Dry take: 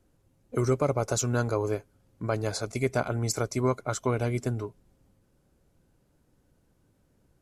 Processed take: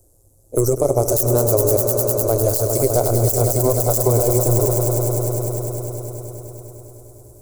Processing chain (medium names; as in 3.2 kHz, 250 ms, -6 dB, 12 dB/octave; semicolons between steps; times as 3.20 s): tracing distortion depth 0.3 ms; AM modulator 120 Hz, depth 55%; FFT filter 100 Hz 0 dB, 210 Hz -16 dB, 350 Hz -2 dB, 630 Hz 0 dB, 1.8 kHz -23 dB, 3.1 kHz -18 dB, 7.7 kHz +11 dB; gain riding within 4 dB 2 s; echo with a slow build-up 101 ms, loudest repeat 5, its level -11.5 dB; loudness maximiser +20.5 dB; trim -4.5 dB